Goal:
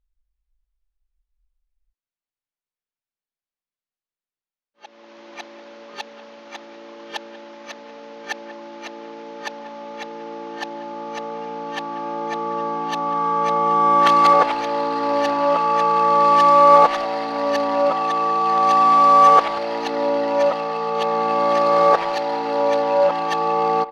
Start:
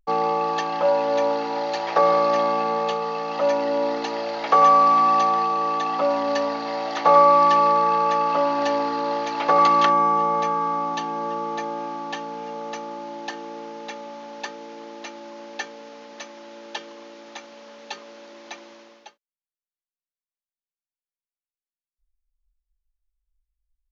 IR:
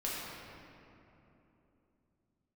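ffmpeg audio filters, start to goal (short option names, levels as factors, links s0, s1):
-filter_complex "[0:a]areverse,asplit=2[s0][s1];[s1]adelay=190,highpass=300,lowpass=3400,asoftclip=type=hard:threshold=0.2,volume=0.178[s2];[s0][s2]amix=inputs=2:normalize=0,adynamicsmooth=sensitivity=3.5:basefreq=5000,volume=1.41"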